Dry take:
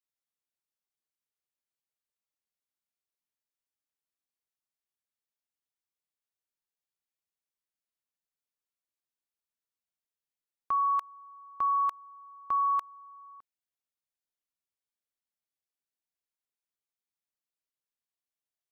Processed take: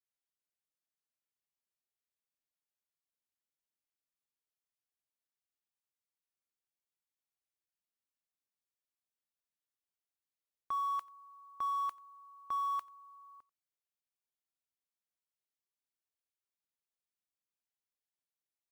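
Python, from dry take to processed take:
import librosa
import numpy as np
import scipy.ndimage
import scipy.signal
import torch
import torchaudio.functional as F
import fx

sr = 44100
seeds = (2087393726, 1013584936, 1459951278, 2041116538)

p1 = fx.mod_noise(x, sr, seeds[0], snr_db=31)
p2 = np.clip(p1, -10.0 ** (-35.0 / 20.0), 10.0 ** (-35.0 / 20.0))
p3 = p1 + (p2 * 10.0 ** (-8.0 / 20.0))
p4 = p3 + 10.0 ** (-23.5 / 20.0) * np.pad(p3, (int(89 * sr / 1000.0), 0))[:len(p3)]
y = p4 * 10.0 ** (-8.5 / 20.0)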